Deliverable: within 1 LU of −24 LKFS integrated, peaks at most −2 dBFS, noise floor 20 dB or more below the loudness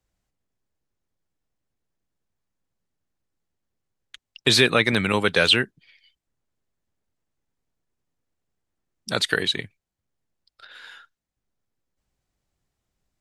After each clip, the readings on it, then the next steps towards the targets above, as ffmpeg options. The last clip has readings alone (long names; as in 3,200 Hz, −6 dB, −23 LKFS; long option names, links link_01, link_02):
integrated loudness −20.5 LKFS; sample peak −3.0 dBFS; target loudness −24.0 LKFS
→ -af "volume=-3.5dB"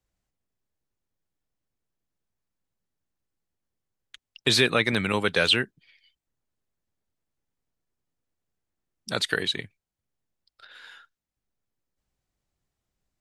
integrated loudness −24.0 LKFS; sample peak −6.5 dBFS; background noise floor −88 dBFS